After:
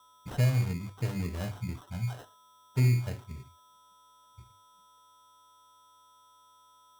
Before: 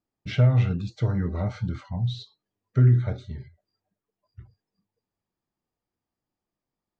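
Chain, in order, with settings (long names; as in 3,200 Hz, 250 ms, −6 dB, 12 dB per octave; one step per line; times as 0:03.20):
mains-hum notches 50/100 Hz
steady tone 3,600 Hz −51 dBFS
sample-rate reduction 2,300 Hz, jitter 0%
level −6.5 dB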